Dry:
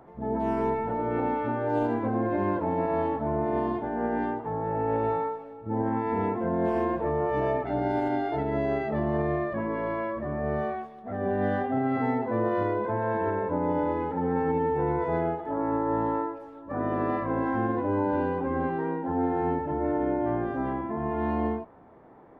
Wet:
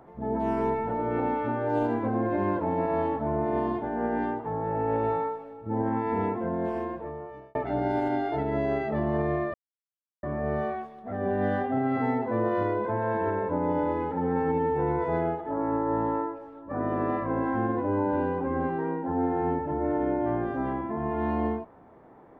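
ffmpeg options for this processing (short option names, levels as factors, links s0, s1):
-filter_complex "[0:a]asettb=1/sr,asplit=3[s0][s1][s2];[s0]atrim=end=15.414[s3];[s1]atrim=start=15.41:end=19.91,asetpts=PTS-STARTPTS,afade=t=in:d=0.004:c=qsin,afade=t=out:st=4.496:d=0.004:c=qsin,lowpass=f=2900:p=1[s4];[s2]atrim=start=19.906[s5];[s3][s4]acrossfade=d=0.004:c1=hsin:c2=qsin[s6];[s6][s5]acrossfade=d=0.004:c1=qsin:c2=hsin,asplit=4[s7][s8][s9][s10];[s7]atrim=end=7.55,asetpts=PTS-STARTPTS,afade=t=out:st=6.2:d=1.35[s11];[s8]atrim=start=7.55:end=9.54,asetpts=PTS-STARTPTS,afade=t=in:d=0.004:c=hsin,afade=t=out:st=1.986:d=0.004:c=hsin[s12];[s9]atrim=start=9.54:end=10.23,asetpts=PTS-STARTPTS,volume=0[s13];[s10]atrim=start=10.23,asetpts=PTS-STARTPTS,afade=t=in:d=0.004:c=hsin[s14];[s11][s12][s13][s14]concat=n=4:v=0:a=1"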